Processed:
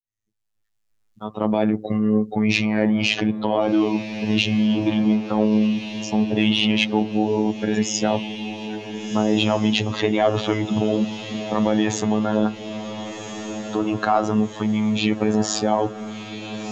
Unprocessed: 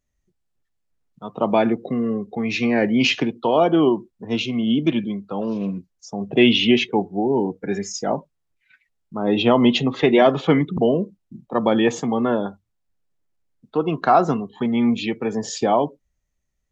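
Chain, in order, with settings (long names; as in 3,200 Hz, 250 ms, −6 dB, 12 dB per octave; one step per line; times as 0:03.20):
fade in at the beginning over 2.48 s
low-shelf EQ 190 Hz +4.5 dB
in parallel at +1 dB: compressor whose output falls as the input rises −23 dBFS, ratio −0.5
on the sum: soft clipping −1 dBFS, distortion −29 dB
phases set to zero 107 Hz
on a send: feedback delay with all-pass diffusion 1,483 ms, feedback 59%, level −12 dB
on the sum: one half of a high-frequency compander encoder only
level −2.5 dB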